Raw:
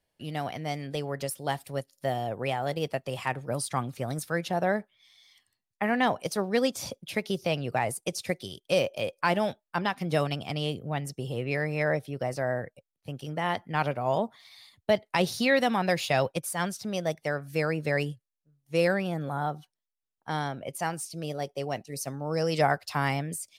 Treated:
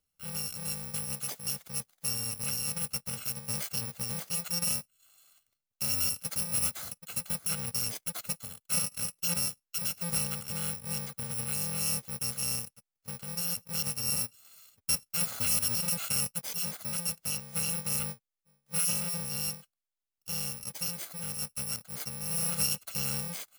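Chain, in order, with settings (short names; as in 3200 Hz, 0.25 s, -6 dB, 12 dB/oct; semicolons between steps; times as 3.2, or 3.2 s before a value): FFT order left unsorted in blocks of 128 samples; in parallel at -2 dB: limiter -20 dBFS, peak gain reduction 10.5 dB; on the sum: gain -8 dB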